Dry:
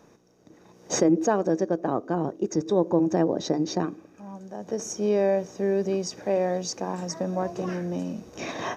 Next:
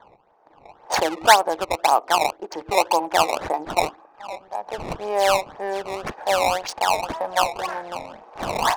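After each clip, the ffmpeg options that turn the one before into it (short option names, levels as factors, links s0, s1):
-af "highpass=f=860:t=q:w=4.2,acrusher=samples=16:mix=1:aa=0.000001:lfo=1:lforange=25.6:lforate=1.9,adynamicsmooth=sensitivity=5:basefreq=1700,volume=1.88"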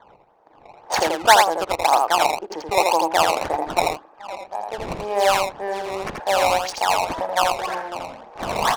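-af "aecho=1:1:83:0.668"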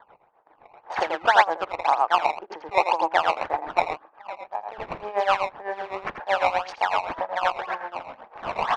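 -af "lowpass=1800,tiltshelf=f=820:g=-7.5,tremolo=f=7.9:d=0.79"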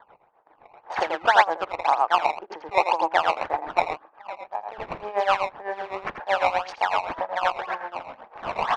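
-af anull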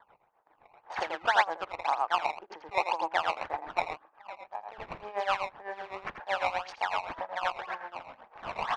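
-af "equalizer=f=450:t=o:w=2.5:g=-4.5,volume=0.562"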